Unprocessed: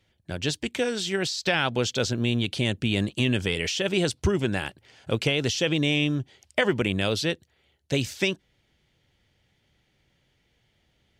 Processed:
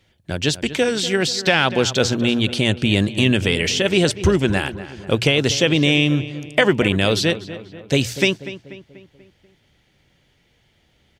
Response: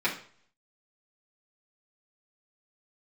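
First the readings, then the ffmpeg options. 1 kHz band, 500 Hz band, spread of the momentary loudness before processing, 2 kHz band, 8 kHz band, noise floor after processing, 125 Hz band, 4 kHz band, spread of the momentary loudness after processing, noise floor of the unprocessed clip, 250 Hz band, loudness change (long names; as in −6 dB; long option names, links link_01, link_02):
+7.5 dB, +8.0 dB, 7 LU, +7.5 dB, +7.5 dB, −62 dBFS, +7.0 dB, +7.5 dB, 9 LU, −70 dBFS, +7.5 dB, +7.5 dB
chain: -filter_complex "[0:a]bandreject=frequency=60:width_type=h:width=6,bandreject=frequency=120:width_type=h:width=6,asplit=2[link_01][link_02];[link_02]adelay=243,lowpass=frequency=2700:poles=1,volume=-13.5dB,asplit=2[link_03][link_04];[link_04]adelay=243,lowpass=frequency=2700:poles=1,volume=0.52,asplit=2[link_05][link_06];[link_06]adelay=243,lowpass=frequency=2700:poles=1,volume=0.52,asplit=2[link_07][link_08];[link_08]adelay=243,lowpass=frequency=2700:poles=1,volume=0.52,asplit=2[link_09][link_10];[link_10]adelay=243,lowpass=frequency=2700:poles=1,volume=0.52[link_11];[link_01][link_03][link_05][link_07][link_09][link_11]amix=inputs=6:normalize=0,volume=7.5dB"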